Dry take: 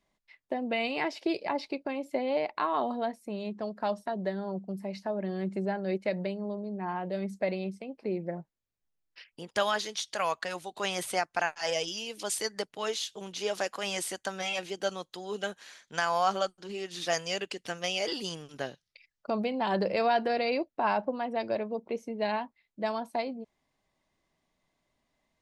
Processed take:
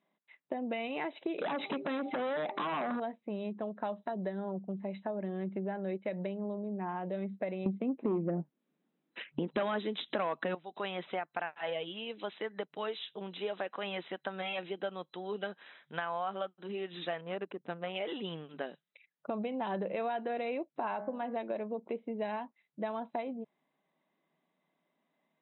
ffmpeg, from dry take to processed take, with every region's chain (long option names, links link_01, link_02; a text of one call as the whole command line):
ffmpeg -i in.wav -filter_complex "[0:a]asettb=1/sr,asplit=3[link_01][link_02][link_03];[link_01]atrim=end=1.384[link_04];[link_02]atrim=start=1.38:end=3,asetpts=PTS-STARTPTS,afade=type=in:duration=0.004:curve=qsin,afade=type=out:start_time=1.616:duration=0.004:curve=qsin,bandreject=frequency=397.2:width_type=h:width=4,bandreject=frequency=794.4:width_type=h:width=4,bandreject=frequency=1191.6:width_type=h:width=4,acompressor=threshold=-41dB:ratio=8:attack=3.2:release=140:knee=1:detection=peak,aeval=exprs='0.0562*sin(PI/2*7.94*val(0)/0.0562)':channel_layout=same[link_05];[link_03]atrim=start=2.996[link_06];[link_04][link_05]acrossfade=duration=0.004:curve1=hsin:curve2=qsin[link_07];[link_07][link_06]acrossfade=duration=0.004:curve1=qsin:curve2=hsin,asettb=1/sr,asplit=3[link_08][link_09][link_10];[link_08]atrim=end=7.664[link_11];[link_09]atrim=start=7.66:end=10.55,asetpts=PTS-STARTPTS,afade=type=in:duration=0.004:curve=qsin,afade=type=out:start_time=2.886:duration=0.004:curve=qsin,equalizer=frequency=260:width=0.85:gain=14,aeval=exprs='0.299*sin(PI/2*2*val(0)/0.299)':channel_layout=same[link_12];[link_10]atrim=start=10.546[link_13];[link_11][link_12]acrossfade=duration=0.004:curve1=hsin:curve2=qsin[link_14];[link_14][link_13]acrossfade=duration=0.004:curve1=qsin:curve2=hsin,asettb=1/sr,asplit=3[link_15][link_16][link_17];[link_15]atrim=end=17.214[link_18];[link_16]atrim=start=17.21:end=17.96,asetpts=PTS-STARTPTS,afade=type=in:duration=0.004:curve=qsin,afade=type=out:start_time=0.746:duration=0.004:curve=qsin,adynamicsmooth=sensitivity=2.5:basefreq=750,asoftclip=type=hard:threshold=-24.5dB[link_19];[link_17]atrim=start=17.956[link_20];[link_18][link_19]acrossfade=duration=0.004:curve1=hsin:curve2=qsin[link_21];[link_21][link_20]acrossfade=duration=0.004:curve1=qsin:curve2=hsin,asettb=1/sr,asplit=3[link_22][link_23][link_24];[link_22]atrim=end=20.764[link_25];[link_23]atrim=start=20.76:end=21.36,asetpts=PTS-STARTPTS,afade=type=in:duration=0.004:curve=qsin,afade=type=out:start_time=0.596:duration=0.004:curve=qsin,bandreject=frequency=69.09:width_type=h:width=4,bandreject=frequency=138.18:width_type=h:width=4,bandreject=frequency=207.27:width_type=h:width=4,bandreject=frequency=276.36:width_type=h:width=4,bandreject=frequency=345.45:width_type=h:width=4,bandreject=frequency=414.54:width_type=h:width=4,bandreject=frequency=483.63:width_type=h:width=4,bandreject=frequency=552.72:width_type=h:width=4,bandreject=frequency=621.81:width_type=h:width=4,bandreject=frequency=690.9:width_type=h:width=4,bandreject=frequency=759.99:width_type=h:width=4,bandreject=frequency=829.08:width_type=h:width=4,bandreject=frequency=898.17:width_type=h:width=4,bandreject=frequency=967.26:width_type=h:width=4,bandreject=frequency=1036.35:width_type=h:width=4,bandreject=frequency=1105.44:width_type=h:width=4,bandreject=frequency=1174.53:width_type=h:width=4,bandreject=frequency=1243.62:width_type=h:width=4,bandreject=frequency=1312.71:width_type=h:width=4,bandreject=frequency=1381.8:width_type=h:width=4,bandreject=frequency=1450.89:width_type=h:width=4,bandreject=frequency=1519.98:width_type=h:width=4,bandreject=frequency=1589.07:width_type=h:width=4,bandreject=frequency=1658.16:width_type=h:width=4,bandreject=frequency=1727.25:width_type=h:width=4,bandreject=frequency=1796.34:width_type=h:width=4,bandreject=frequency=1865.43:width_type=h:width=4,bandreject=frequency=1934.52:width_type=h:width=4,bandreject=frequency=2003.61:width_type=h:width=4,bandreject=frequency=2072.7:width_type=h:width=4,bandreject=frequency=2141.79:width_type=h:width=4,bandreject=frequency=2210.88:width_type=h:width=4,bandreject=frequency=2279.97:width_type=h:width=4,acompressor=mode=upward:threshold=-50dB:ratio=2.5:attack=3.2:release=140:knee=2.83:detection=peak[link_26];[link_24]atrim=start=21.356[link_27];[link_25][link_26]acrossfade=duration=0.004:curve1=hsin:curve2=qsin[link_28];[link_28][link_27]acrossfade=duration=0.004:curve1=qsin:curve2=hsin,afftfilt=real='re*between(b*sr/4096,140,4000)':imag='im*between(b*sr/4096,140,4000)':win_size=4096:overlap=0.75,highshelf=frequency=2900:gain=-8,acompressor=threshold=-33dB:ratio=4" out.wav